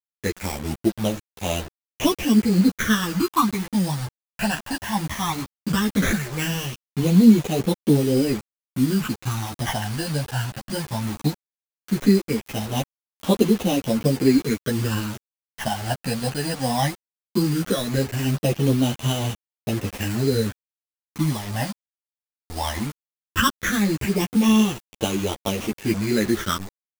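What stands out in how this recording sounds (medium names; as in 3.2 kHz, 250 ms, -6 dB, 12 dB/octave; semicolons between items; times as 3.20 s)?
aliases and images of a low sample rate 4.5 kHz, jitter 0%; phasing stages 12, 0.17 Hz, lowest notch 370–1700 Hz; a quantiser's noise floor 6-bit, dither none; a shimmering, thickened sound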